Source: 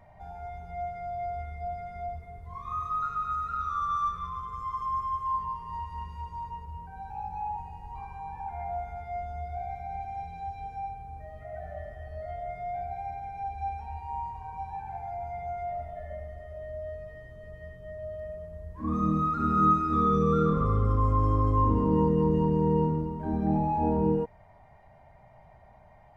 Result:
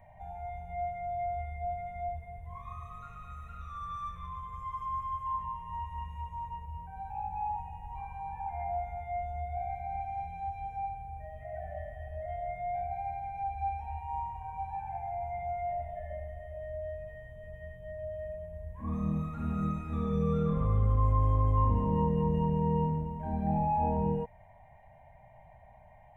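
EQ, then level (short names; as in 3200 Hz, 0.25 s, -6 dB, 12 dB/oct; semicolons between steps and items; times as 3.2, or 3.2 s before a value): fixed phaser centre 1300 Hz, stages 6; 0.0 dB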